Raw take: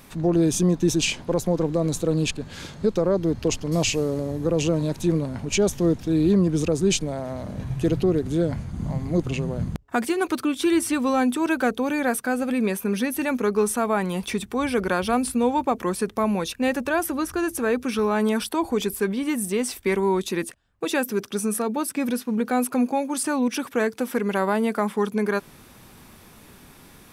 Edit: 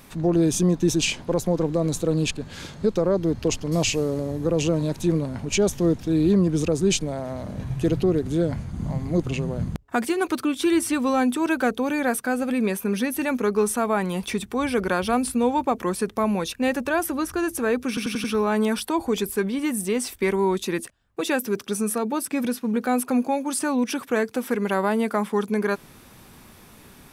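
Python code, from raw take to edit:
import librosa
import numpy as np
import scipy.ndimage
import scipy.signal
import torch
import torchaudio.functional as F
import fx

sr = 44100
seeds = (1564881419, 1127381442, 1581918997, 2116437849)

y = fx.edit(x, sr, fx.stutter(start_s=17.88, slice_s=0.09, count=5), tone=tone)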